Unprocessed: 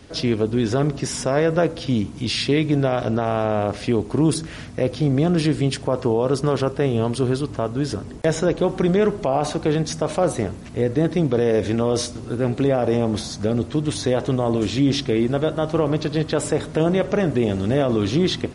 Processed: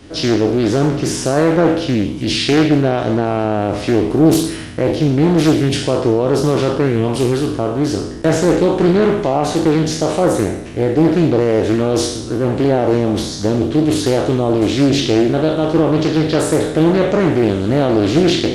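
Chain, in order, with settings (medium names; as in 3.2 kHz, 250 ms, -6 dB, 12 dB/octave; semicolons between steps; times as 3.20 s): spectral sustain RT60 0.82 s; small resonant body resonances 320/3000 Hz, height 7 dB; loudspeaker Doppler distortion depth 0.5 ms; trim +2.5 dB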